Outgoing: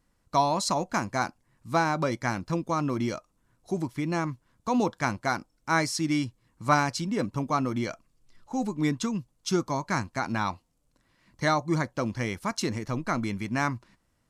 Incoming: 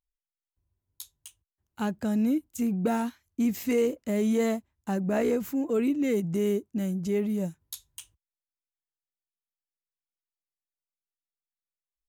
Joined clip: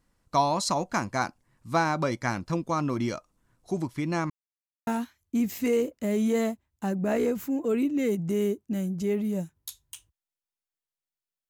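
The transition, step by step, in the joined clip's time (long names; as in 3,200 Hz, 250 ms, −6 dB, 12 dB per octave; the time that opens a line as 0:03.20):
outgoing
0:04.30–0:04.87: silence
0:04.87: continue with incoming from 0:02.92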